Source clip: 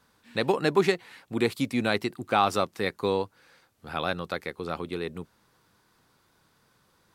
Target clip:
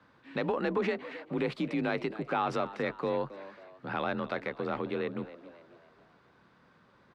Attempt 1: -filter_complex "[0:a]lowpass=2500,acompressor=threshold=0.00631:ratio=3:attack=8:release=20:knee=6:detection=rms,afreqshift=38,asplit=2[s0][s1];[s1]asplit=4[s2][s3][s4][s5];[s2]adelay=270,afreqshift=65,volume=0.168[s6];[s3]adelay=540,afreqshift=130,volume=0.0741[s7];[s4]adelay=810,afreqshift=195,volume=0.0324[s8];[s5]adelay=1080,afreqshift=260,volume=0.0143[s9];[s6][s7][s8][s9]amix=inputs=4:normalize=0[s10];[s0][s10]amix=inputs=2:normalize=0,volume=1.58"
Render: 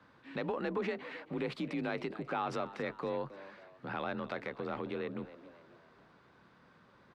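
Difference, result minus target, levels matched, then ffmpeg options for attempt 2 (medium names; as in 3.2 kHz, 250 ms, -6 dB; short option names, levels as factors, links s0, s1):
compression: peak gain reduction +5.5 dB
-filter_complex "[0:a]lowpass=2500,acompressor=threshold=0.0158:ratio=3:attack=8:release=20:knee=6:detection=rms,afreqshift=38,asplit=2[s0][s1];[s1]asplit=4[s2][s3][s4][s5];[s2]adelay=270,afreqshift=65,volume=0.168[s6];[s3]adelay=540,afreqshift=130,volume=0.0741[s7];[s4]adelay=810,afreqshift=195,volume=0.0324[s8];[s5]adelay=1080,afreqshift=260,volume=0.0143[s9];[s6][s7][s8][s9]amix=inputs=4:normalize=0[s10];[s0][s10]amix=inputs=2:normalize=0,volume=1.58"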